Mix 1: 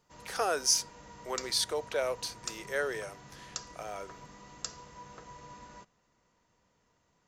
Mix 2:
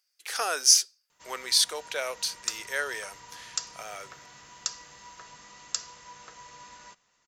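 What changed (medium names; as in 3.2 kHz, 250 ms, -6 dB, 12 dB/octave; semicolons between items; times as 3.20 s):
background: entry +1.10 s; master: add tilt shelf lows -8.5 dB, about 850 Hz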